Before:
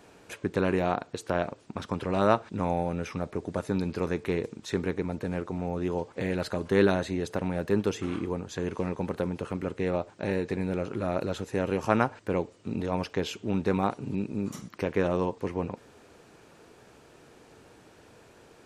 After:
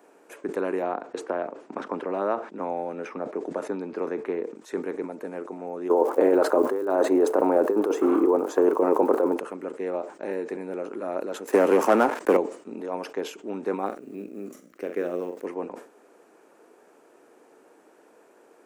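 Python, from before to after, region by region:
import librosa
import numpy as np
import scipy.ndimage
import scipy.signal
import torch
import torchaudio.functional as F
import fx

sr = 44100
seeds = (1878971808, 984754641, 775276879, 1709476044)

y = fx.chain(x, sr, fx.lowpass(hz=7700.0, slope=12),
    fx.high_shelf(hz=4700.0, db=-9.5),
    fx.band_squash(depth_pct=70), at=(0.82, 4.56))
y = fx.band_shelf(y, sr, hz=600.0, db=13.0, octaves=2.7, at=(5.89, 9.37), fade=0.02)
y = fx.over_compress(y, sr, threshold_db=-19.0, ratio=-1.0, at=(5.89, 9.37), fade=0.02)
y = fx.dmg_crackle(y, sr, seeds[0], per_s=230.0, level_db=-37.0, at=(5.89, 9.37), fade=0.02)
y = fx.chain(y, sr, fx.highpass(hz=160.0, slope=24),
    fx.leveller(passes=3),
    fx.band_squash(depth_pct=70), at=(11.47, 12.37))
y = fx.chain(y, sr, fx.law_mismatch(coded='A'),
    fx.peak_eq(hz=950.0, db=-13.0, octaves=0.48),
    fx.doubler(ms=45.0, db=-11), at=(13.86, 15.45))
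y = scipy.signal.sosfilt(scipy.signal.butter(4, 280.0, 'highpass', fs=sr, output='sos'), y)
y = fx.peak_eq(y, sr, hz=3900.0, db=-13.0, octaves=1.7)
y = fx.sustainer(y, sr, db_per_s=130.0)
y = F.gain(torch.from_numpy(y), 1.0).numpy()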